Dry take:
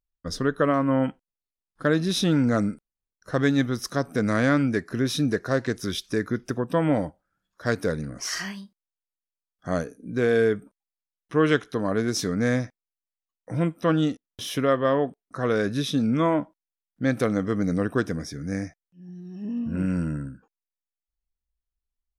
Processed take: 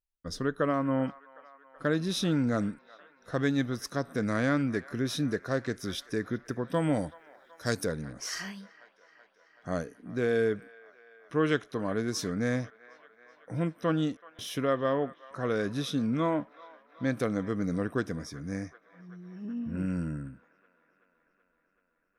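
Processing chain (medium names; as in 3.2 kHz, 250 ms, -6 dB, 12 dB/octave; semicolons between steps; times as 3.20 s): 6.74–7.85 s: tone controls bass +2 dB, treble +14 dB; on a send: feedback echo behind a band-pass 379 ms, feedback 72%, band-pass 1.4 kHz, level -18 dB; on the sum: trim -6 dB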